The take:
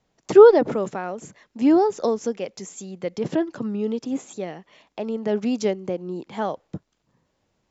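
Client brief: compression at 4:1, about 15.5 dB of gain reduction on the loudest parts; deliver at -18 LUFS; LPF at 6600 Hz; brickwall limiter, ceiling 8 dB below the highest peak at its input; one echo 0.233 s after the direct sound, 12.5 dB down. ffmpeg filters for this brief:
-af "lowpass=6.6k,acompressor=threshold=-25dB:ratio=4,alimiter=limit=-23dB:level=0:latency=1,aecho=1:1:233:0.237,volume=15dB"

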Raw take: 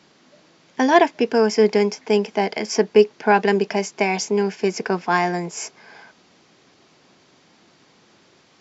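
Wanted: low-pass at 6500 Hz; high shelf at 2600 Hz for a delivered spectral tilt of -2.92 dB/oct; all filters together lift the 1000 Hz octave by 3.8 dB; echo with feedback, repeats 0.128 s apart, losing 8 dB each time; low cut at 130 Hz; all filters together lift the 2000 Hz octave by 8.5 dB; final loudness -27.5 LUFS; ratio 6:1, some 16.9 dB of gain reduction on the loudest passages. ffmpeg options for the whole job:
-af "highpass=130,lowpass=6.5k,equalizer=f=1k:t=o:g=3,equalizer=f=2k:t=o:g=8,highshelf=f=2.6k:g=4,acompressor=threshold=-25dB:ratio=6,aecho=1:1:128|256|384|512|640:0.398|0.159|0.0637|0.0255|0.0102,volume=1dB"

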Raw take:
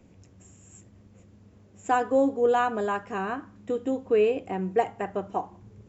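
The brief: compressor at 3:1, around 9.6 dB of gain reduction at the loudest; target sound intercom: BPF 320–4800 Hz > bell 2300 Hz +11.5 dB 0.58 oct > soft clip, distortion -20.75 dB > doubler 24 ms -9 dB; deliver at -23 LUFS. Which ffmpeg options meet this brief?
-filter_complex "[0:a]acompressor=threshold=-31dB:ratio=3,highpass=320,lowpass=4.8k,equalizer=f=2.3k:t=o:w=0.58:g=11.5,asoftclip=threshold=-23.5dB,asplit=2[a][b];[b]adelay=24,volume=-9dB[c];[a][c]amix=inputs=2:normalize=0,volume=12.5dB"

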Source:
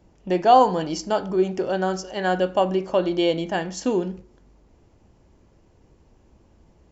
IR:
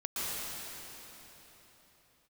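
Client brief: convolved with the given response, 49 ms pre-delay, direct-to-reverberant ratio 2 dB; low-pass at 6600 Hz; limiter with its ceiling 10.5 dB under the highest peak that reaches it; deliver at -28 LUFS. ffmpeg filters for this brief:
-filter_complex "[0:a]lowpass=6.6k,alimiter=limit=-13dB:level=0:latency=1,asplit=2[a][b];[1:a]atrim=start_sample=2205,adelay=49[c];[b][c]afir=irnorm=-1:irlink=0,volume=-8.5dB[d];[a][d]amix=inputs=2:normalize=0,volume=-5dB"

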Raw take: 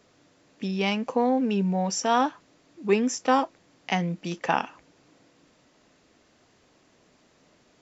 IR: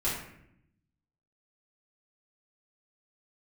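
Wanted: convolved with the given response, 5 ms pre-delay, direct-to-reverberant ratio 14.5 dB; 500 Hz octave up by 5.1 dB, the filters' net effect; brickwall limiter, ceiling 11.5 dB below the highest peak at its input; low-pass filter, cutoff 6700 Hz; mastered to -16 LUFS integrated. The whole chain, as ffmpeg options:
-filter_complex "[0:a]lowpass=6.7k,equalizer=f=500:t=o:g=6,alimiter=limit=-17dB:level=0:latency=1,asplit=2[a][b];[1:a]atrim=start_sample=2205,adelay=5[c];[b][c]afir=irnorm=-1:irlink=0,volume=-22.5dB[d];[a][d]amix=inputs=2:normalize=0,volume=12dB"

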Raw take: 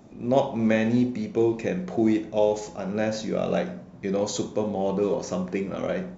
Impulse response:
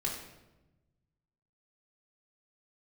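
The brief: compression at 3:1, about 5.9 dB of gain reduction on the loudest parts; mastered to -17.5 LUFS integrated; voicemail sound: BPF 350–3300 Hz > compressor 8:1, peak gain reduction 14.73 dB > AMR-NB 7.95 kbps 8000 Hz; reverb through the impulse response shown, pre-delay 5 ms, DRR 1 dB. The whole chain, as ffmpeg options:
-filter_complex "[0:a]acompressor=threshold=-24dB:ratio=3,asplit=2[a][b];[1:a]atrim=start_sample=2205,adelay=5[c];[b][c]afir=irnorm=-1:irlink=0,volume=-4.5dB[d];[a][d]amix=inputs=2:normalize=0,highpass=350,lowpass=3.3k,acompressor=threshold=-33dB:ratio=8,volume=20dB" -ar 8000 -c:a libopencore_amrnb -b:a 7950

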